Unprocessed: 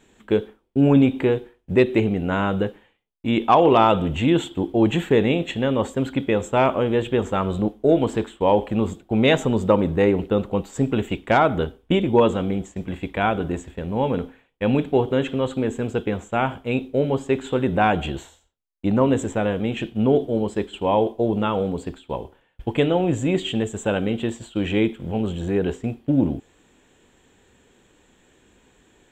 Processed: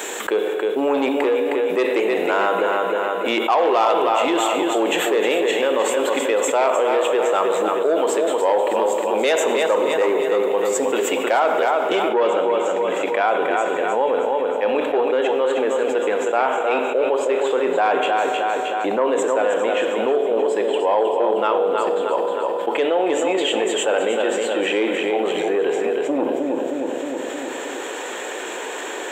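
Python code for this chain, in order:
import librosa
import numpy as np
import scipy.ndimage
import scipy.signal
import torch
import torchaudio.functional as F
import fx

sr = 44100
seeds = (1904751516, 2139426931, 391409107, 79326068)

y = fx.echo_feedback(x, sr, ms=312, feedback_pct=43, wet_db=-7.0)
y = fx.rev_schroeder(y, sr, rt60_s=1.3, comb_ms=31, drr_db=10.5)
y = 10.0 ** (-10.0 / 20.0) * np.tanh(y / 10.0 ** (-10.0 / 20.0))
y = fx.high_shelf(y, sr, hz=6100.0, db=fx.steps((0.0, 8.0), (12.08, -5.0)))
y = scipy.signal.sosfilt(scipy.signal.butter(4, 420.0, 'highpass', fs=sr, output='sos'), y)
y = fx.peak_eq(y, sr, hz=3900.0, db=-5.0, octaves=1.7)
y = fx.env_flatten(y, sr, amount_pct=70)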